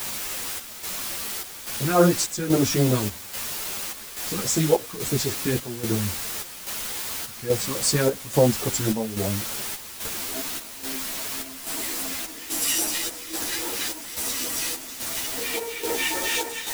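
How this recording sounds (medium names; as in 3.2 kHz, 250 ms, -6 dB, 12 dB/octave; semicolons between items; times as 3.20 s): phasing stages 2, 3.6 Hz, lowest notch 600–3100 Hz; a quantiser's noise floor 6-bit, dither triangular; chopped level 1.2 Hz, depth 60%, duty 70%; a shimmering, thickened sound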